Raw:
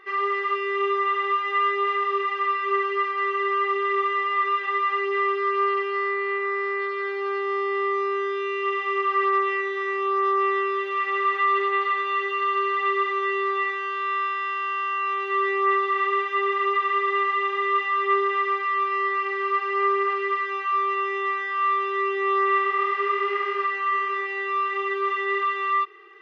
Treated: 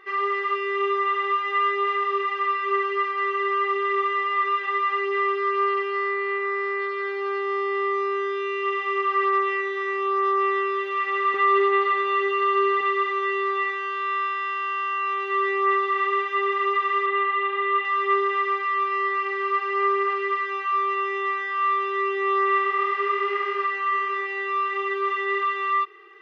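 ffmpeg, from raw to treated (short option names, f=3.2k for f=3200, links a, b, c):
-filter_complex "[0:a]asettb=1/sr,asplit=3[a][b][c];[a]atrim=end=11.344[d];[b]atrim=start=11.34:end=12.81,asetpts=PTS-STARTPTS,afade=t=in:d=0.004:c=qsin,afade=t=out:st=1.466:d=0.004:c=qsin,lowshelf=f=470:g=11.5[e];[c]atrim=start=12.806[f];[d][e]acrossfade=d=0.004:c1=hsin:c2=qsin[g];[g][f]acrossfade=d=0.004:c1=qsin:c2=hsin,asettb=1/sr,asplit=3[h][i][j];[h]atrim=end=17.064[k];[i]atrim=start=17.06:end=17.85,asetpts=PTS-STARTPTS,afade=t=in:d=0.004:c=qsin,afade=t=out:st=0.786:d=0.004:c=qsin,lowpass=f=3.7k:w=0.5412,lowpass=f=3.7k:w=1.3066[l];[j]atrim=start=17.846[m];[k][l]acrossfade=d=0.004:c1=hsin:c2=qsin[n];[n][m]acrossfade=d=0.004:c1=qsin:c2=hsin"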